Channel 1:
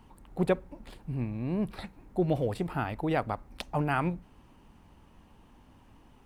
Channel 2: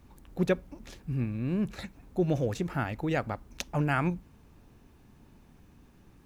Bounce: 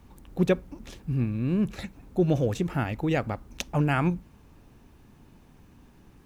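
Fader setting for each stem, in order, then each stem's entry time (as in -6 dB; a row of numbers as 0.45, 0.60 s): -8.0, +2.5 dB; 0.00, 0.00 s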